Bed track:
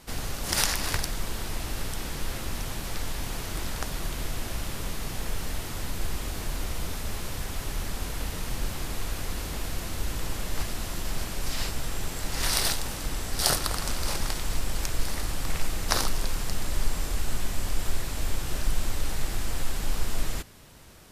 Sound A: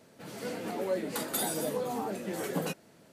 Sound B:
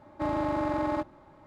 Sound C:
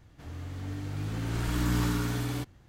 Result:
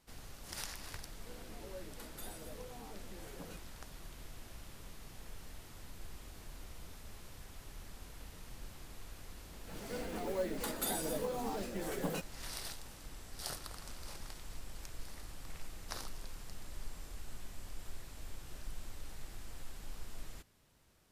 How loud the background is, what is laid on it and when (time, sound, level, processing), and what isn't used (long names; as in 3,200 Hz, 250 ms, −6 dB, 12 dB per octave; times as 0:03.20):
bed track −18.5 dB
0:00.84: mix in A −18 dB
0:09.48: mix in A −5 dB + one scale factor per block 5 bits
not used: B, C